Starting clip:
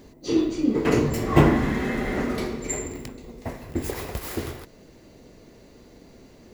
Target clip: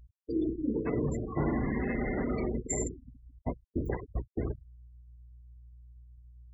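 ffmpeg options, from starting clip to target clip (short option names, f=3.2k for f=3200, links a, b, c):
-af "aeval=exprs='val(0)+0.0178*(sin(2*PI*60*n/s)+sin(2*PI*2*60*n/s)/2+sin(2*PI*3*60*n/s)/3+sin(2*PI*4*60*n/s)/4+sin(2*PI*5*60*n/s)/5)':c=same,agate=range=-17dB:threshold=-29dB:ratio=16:detection=peak,areverse,acompressor=threshold=-33dB:ratio=5,areverse,afftfilt=real='re*gte(hypot(re,im),0.0178)':imag='im*gte(hypot(re,im),0.0178)':win_size=1024:overlap=0.75,volume=4dB"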